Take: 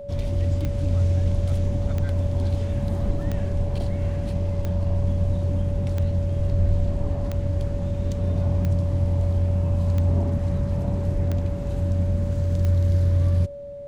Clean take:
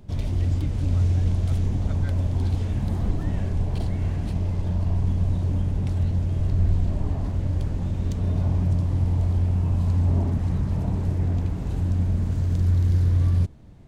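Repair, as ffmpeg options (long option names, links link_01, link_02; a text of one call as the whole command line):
ffmpeg -i in.wav -filter_complex "[0:a]adeclick=threshold=4,bandreject=frequency=570:width=30,asplit=3[link_01][link_02][link_03];[link_01]afade=type=out:start_time=1.34:duration=0.02[link_04];[link_02]highpass=frequency=140:width=0.5412,highpass=frequency=140:width=1.3066,afade=type=in:start_time=1.34:duration=0.02,afade=type=out:start_time=1.46:duration=0.02[link_05];[link_03]afade=type=in:start_time=1.46:duration=0.02[link_06];[link_04][link_05][link_06]amix=inputs=3:normalize=0,asplit=3[link_07][link_08][link_09];[link_07]afade=type=out:start_time=11.13:duration=0.02[link_10];[link_08]highpass=frequency=140:width=0.5412,highpass=frequency=140:width=1.3066,afade=type=in:start_time=11.13:duration=0.02,afade=type=out:start_time=11.25:duration=0.02[link_11];[link_09]afade=type=in:start_time=11.25:duration=0.02[link_12];[link_10][link_11][link_12]amix=inputs=3:normalize=0" out.wav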